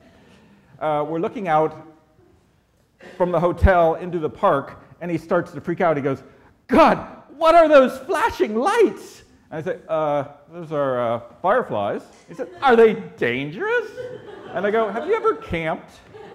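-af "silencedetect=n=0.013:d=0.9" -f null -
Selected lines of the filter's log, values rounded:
silence_start: 1.91
silence_end: 3.01 | silence_duration: 1.10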